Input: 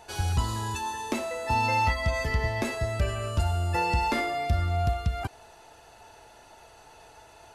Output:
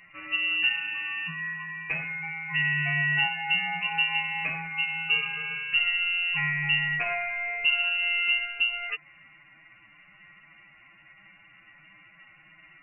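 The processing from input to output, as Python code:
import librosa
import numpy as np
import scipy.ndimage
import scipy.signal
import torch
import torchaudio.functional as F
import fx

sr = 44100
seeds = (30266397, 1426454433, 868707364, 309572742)

y = fx.stretch_vocoder(x, sr, factor=1.7)
y = fx.freq_invert(y, sr, carrier_hz=2800)
y = F.gain(torch.from_numpy(y), -1.5).numpy()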